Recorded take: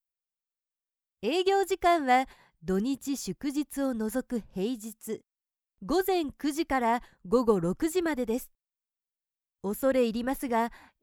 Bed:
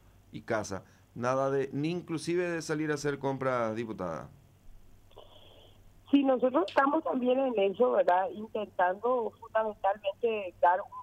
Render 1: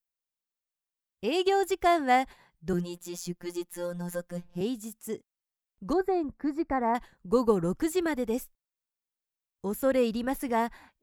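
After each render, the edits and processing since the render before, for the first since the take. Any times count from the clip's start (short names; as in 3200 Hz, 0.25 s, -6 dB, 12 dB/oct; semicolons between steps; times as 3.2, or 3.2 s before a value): 2.73–4.61 robotiser 175 Hz; 5.93–6.95 running mean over 14 samples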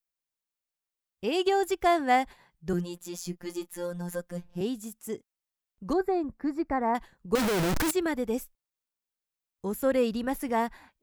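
3.22–3.74 doubler 27 ms -13 dB; 7.35–7.91 infinite clipping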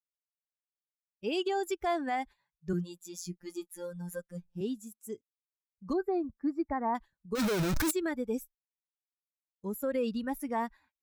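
per-bin expansion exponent 1.5; limiter -23 dBFS, peak gain reduction 9.5 dB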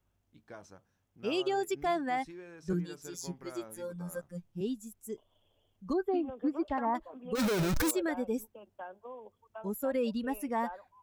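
add bed -17.5 dB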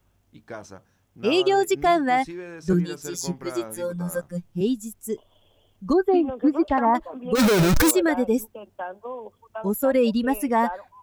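gain +11.5 dB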